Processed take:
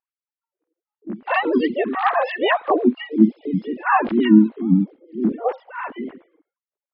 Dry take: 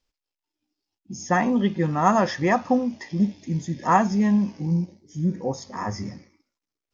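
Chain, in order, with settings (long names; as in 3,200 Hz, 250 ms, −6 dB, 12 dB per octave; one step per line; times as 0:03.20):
three sine waves on the formant tracks
pitch-shifted copies added +3 semitones −15 dB, +7 semitones −3 dB
low-pass that shuts in the quiet parts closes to 1,300 Hz, open at −16.5 dBFS
level +2 dB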